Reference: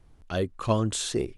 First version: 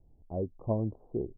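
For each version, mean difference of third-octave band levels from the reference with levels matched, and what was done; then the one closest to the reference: 11.0 dB: Wiener smoothing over 25 samples; steep low-pass 870 Hz 48 dB/oct; gain -5 dB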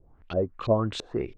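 6.5 dB: dynamic EQ 3200 Hz, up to -7 dB, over -54 dBFS, Q 6; LFO low-pass saw up 3 Hz 420–4100 Hz; gain -2 dB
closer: second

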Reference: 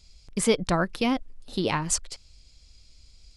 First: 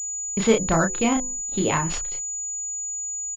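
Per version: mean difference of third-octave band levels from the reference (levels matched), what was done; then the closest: 6.5 dB: de-hum 126.5 Hz, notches 8; on a send: early reflections 21 ms -17.5 dB, 31 ms -4 dB; on the sum: gate -40 dBFS, range -16 dB; pulse-width modulation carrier 6900 Hz; gain +2.5 dB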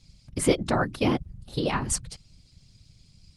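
5.0 dB: notches 60/120/180 Hz; dynamic EQ 220 Hz, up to +3 dB, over -40 dBFS, Q 4.9; whisperiser; Opus 32 kbps 48000 Hz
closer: second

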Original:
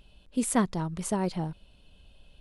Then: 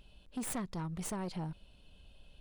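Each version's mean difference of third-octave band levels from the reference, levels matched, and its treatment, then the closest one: 5.0 dB: tracing distortion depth 0.055 ms; compressor, threshold -27 dBFS, peak gain reduction 8.5 dB; soft clip -30 dBFS, distortion -11 dB; gain -2.5 dB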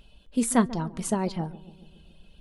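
3.0 dB: reverb removal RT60 0.55 s; resonator 230 Hz, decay 0.16 s, harmonics all, mix 50%; on a send: darkening echo 0.14 s, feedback 67%, low-pass 830 Hz, level -16 dB; on the sum: gain +7 dB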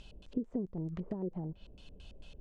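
10.0 dB: treble ducked by the level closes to 530 Hz, closed at -25.5 dBFS; compressor 12:1, threshold -38 dBFS, peak gain reduction 17.5 dB; LFO low-pass square 4.5 Hz 420–6700 Hz; gain +3 dB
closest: second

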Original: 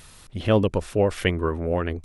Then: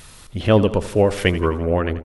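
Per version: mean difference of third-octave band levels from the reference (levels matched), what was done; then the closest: 2.5 dB: feedback echo 84 ms, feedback 56%, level -15 dB; gain +4.5 dB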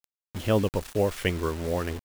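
8.5 dB: bit-crush 6-bit; gain -4 dB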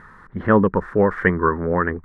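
6.0 dB: EQ curve 120 Hz 0 dB, 190 Hz +10 dB, 280 Hz +4 dB, 440 Hz +7 dB, 660 Hz -1 dB, 1000 Hz +13 dB, 1800 Hz +14 dB, 2600 Hz -15 dB, 6500 Hz -20 dB, 11000 Hz -26 dB; gain -1.5 dB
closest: first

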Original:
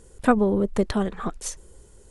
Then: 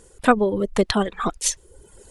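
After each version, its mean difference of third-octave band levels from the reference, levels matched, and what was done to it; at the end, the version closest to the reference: 3.5 dB: low shelf 280 Hz -7.5 dB; reverb removal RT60 0.82 s; dynamic EQ 3400 Hz, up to +6 dB, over -49 dBFS, Q 1.2; vocal rider 2 s; gain +6 dB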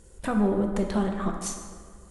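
5.5 dB: bell 440 Hz -6.5 dB 0.28 oct; limiter -15.5 dBFS, peak gain reduction 8.5 dB; analogue delay 0.152 s, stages 2048, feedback 57%, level -12.5 dB; plate-style reverb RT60 1.5 s, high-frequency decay 0.65×, DRR 3 dB; gain -2 dB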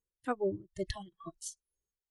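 8.5 dB: spectral noise reduction 29 dB; gate -46 dBFS, range -8 dB; tremolo 2.2 Hz, depth 79%; gain -6 dB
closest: first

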